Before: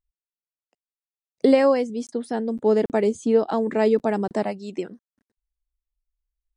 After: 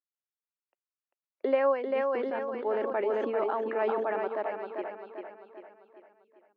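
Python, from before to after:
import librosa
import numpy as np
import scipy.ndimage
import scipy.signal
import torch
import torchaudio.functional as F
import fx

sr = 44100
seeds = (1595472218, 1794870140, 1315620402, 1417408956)

y = fx.cabinet(x, sr, low_hz=410.0, low_slope=24, high_hz=2300.0, hz=(460.0, 730.0, 2000.0), db=(-10, -7, -6))
y = fx.echo_feedback(y, sr, ms=394, feedback_pct=47, wet_db=-5)
y = fx.sustainer(y, sr, db_per_s=23.0, at=(1.87, 4.28))
y = y * librosa.db_to_amplitude(-2.0)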